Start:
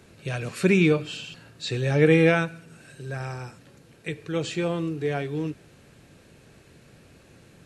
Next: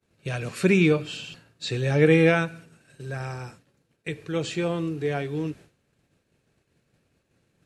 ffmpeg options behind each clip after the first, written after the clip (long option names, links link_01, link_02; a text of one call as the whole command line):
ffmpeg -i in.wav -af "agate=range=-33dB:threshold=-41dB:ratio=3:detection=peak" out.wav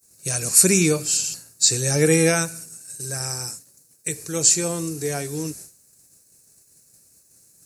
ffmpeg -i in.wav -af "aexciter=amount=15.1:drive=8.3:freq=5100" out.wav